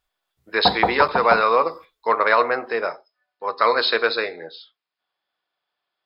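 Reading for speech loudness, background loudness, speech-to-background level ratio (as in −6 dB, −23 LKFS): −20.5 LKFS, −24.0 LKFS, 3.5 dB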